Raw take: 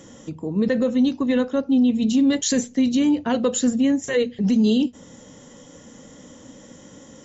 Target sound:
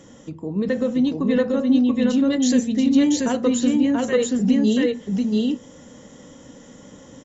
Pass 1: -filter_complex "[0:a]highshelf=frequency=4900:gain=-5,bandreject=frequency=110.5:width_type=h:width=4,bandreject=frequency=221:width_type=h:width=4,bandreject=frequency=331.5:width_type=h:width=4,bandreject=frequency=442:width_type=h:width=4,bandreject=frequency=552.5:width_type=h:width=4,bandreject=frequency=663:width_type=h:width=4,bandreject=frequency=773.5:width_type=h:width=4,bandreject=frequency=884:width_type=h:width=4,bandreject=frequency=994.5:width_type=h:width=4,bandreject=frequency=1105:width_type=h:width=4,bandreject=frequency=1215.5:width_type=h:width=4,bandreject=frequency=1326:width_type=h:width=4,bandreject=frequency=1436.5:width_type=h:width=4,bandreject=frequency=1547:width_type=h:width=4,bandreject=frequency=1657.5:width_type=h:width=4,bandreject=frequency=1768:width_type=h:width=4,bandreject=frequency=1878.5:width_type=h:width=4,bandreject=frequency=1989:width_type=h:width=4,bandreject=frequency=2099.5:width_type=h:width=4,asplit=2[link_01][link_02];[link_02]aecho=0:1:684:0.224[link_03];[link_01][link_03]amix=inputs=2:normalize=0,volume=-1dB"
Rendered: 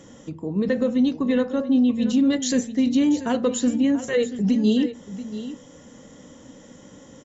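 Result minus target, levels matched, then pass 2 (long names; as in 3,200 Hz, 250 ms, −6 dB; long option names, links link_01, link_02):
echo-to-direct −11.5 dB
-filter_complex "[0:a]highshelf=frequency=4900:gain=-5,bandreject=frequency=110.5:width_type=h:width=4,bandreject=frequency=221:width_type=h:width=4,bandreject=frequency=331.5:width_type=h:width=4,bandreject=frequency=442:width_type=h:width=4,bandreject=frequency=552.5:width_type=h:width=4,bandreject=frequency=663:width_type=h:width=4,bandreject=frequency=773.5:width_type=h:width=4,bandreject=frequency=884:width_type=h:width=4,bandreject=frequency=994.5:width_type=h:width=4,bandreject=frequency=1105:width_type=h:width=4,bandreject=frequency=1215.5:width_type=h:width=4,bandreject=frequency=1326:width_type=h:width=4,bandreject=frequency=1436.5:width_type=h:width=4,bandreject=frequency=1547:width_type=h:width=4,bandreject=frequency=1657.5:width_type=h:width=4,bandreject=frequency=1768:width_type=h:width=4,bandreject=frequency=1878.5:width_type=h:width=4,bandreject=frequency=1989:width_type=h:width=4,bandreject=frequency=2099.5:width_type=h:width=4,asplit=2[link_01][link_02];[link_02]aecho=0:1:684:0.841[link_03];[link_01][link_03]amix=inputs=2:normalize=0,volume=-1dB"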